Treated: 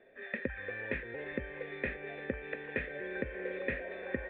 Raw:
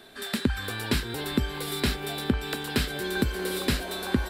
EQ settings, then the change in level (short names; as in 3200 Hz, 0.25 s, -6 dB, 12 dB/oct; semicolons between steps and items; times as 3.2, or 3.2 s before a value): dynamic EQ 2000 Hz, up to +7 dB, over -45 dBFS, Q 1.1; vocal tract filter e; +3.5 dB